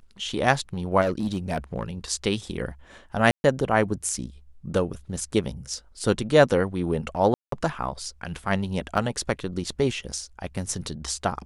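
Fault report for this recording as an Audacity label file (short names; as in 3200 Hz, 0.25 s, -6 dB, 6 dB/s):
1.010000	1.830000	clipped -20 dBFS
3.310000	3.440000	gap 0.131 s
7.340000	7.520000	gap 0.183 s
8.970000	8.980000	gap 5.2 ms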